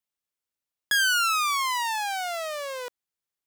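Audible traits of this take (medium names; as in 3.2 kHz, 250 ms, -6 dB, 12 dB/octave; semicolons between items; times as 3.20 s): noise floor -90 dBFS; spectral tilt -4.5 dB/octave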